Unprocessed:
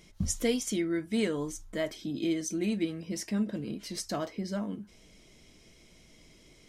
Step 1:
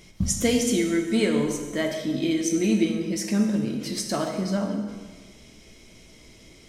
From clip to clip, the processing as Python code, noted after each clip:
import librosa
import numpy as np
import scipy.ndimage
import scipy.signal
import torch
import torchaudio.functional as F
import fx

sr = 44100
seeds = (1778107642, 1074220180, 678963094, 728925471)

y = fx.rev_plate(x, sr, seeds[0], rt60_s=1.5, hf_ratio=0.85, predelay_ms=0, drr_db=2.5)
y = y * 10.0 ** (6.0 / 20.0)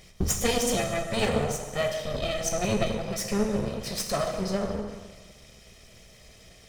y = fx.lower_of_two(x, sr, delay_ms=1.6)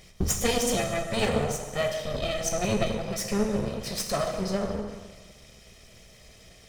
y = x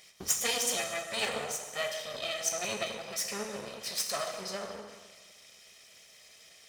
y = fx.highpass(x, sr, hz=1500.0, slope=6)